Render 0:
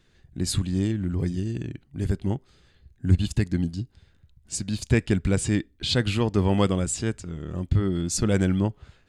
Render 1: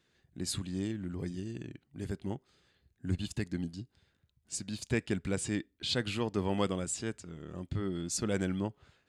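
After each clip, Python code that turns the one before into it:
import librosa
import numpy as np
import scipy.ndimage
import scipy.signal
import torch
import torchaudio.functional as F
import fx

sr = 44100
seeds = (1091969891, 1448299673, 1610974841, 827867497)

y = fx.highpass(x, sr, hz=210.0, slope=6)
y = y * 10.0 ** (-7.0 / 20.0)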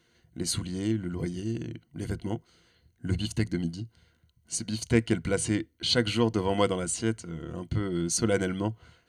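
y = fx.ripple_eq(x, sr, per_octave=1.9, db=10)
y = y * 10.0 ** (5.5 / 20.0)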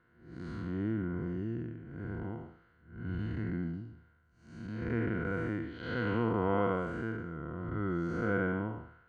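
y = fx.spec_blur(x, sr, span_ms=240.0)
y = fx.lowpass_res(y, sr, hz=1400.0, q=2.9)
y = y * 10.0 ** (-2.5 / 20.0)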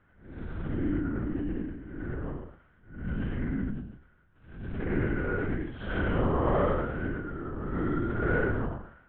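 y = fx.lpc_vocoder(x, sr, seeds[0], excitation='whisper', order=8)
y = y * 10.0 ** (4.5 / 20.0)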